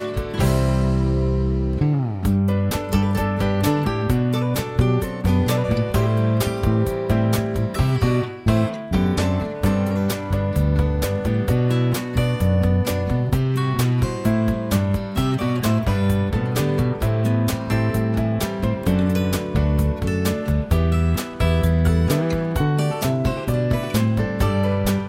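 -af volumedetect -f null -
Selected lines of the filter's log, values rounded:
mean_volume: -19.6 dB
max_volume: -5.8 dB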